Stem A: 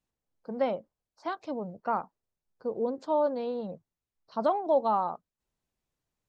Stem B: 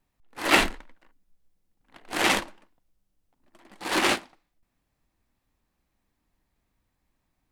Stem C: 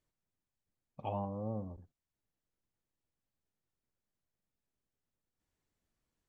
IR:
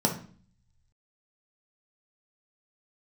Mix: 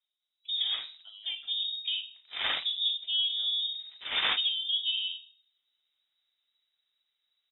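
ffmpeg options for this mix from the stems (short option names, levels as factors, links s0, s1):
-filter_complex "[0:a]acompressor=threshold=0.0447:ratio=6,volume=0.316,asplit=3[s0][s1][s2];[s1]volume=0.447[s3];[1:a]adelay=200,volume=0.501,afade=t=in:st=2.13:d=0.22:silence=0.281838,asplit=2[s4][s5];[s5]volume=0.0891[s6];[2:a]highpass=840,volume=0.282,asplit=2[s7][s8];[s8]volume=0.158[s9];[s2]apad=whole_len=340261[s10];[s4][s10]sidechaincompress=threshold=0.00447:ratio=8:attack=16:release=1060[s11];[3:a]atrim=start_sample=2205[s12];[s3][s6][s9]amix=inputs=3:normalize=0[s13];[s13][s12]afir=irnorm=-1:irlink=0[s14];[s0][s11][s7][s14]amix=inputs=4:normalize=0,lowpass=f=3300:t=q:w=0.5098,lowpass=f=3300:t=q:w=0.6013,lowpass=f=3300:t=q:w=0.9,lowpass=f=3300:t=q:w=2.563,afreqshift=-3900"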